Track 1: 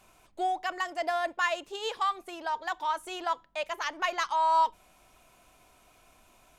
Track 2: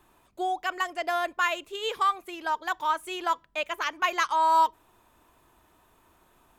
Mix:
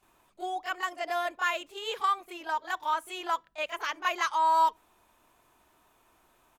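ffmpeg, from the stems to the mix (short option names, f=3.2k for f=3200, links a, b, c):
-filter_complex "[0:a]volume=-11.5dB[a];[1:a]lowshelf=f=220:g=-7.5,adelay=26,volume=-3dB[b];[a][b]amix=inputs=2:normalize=0"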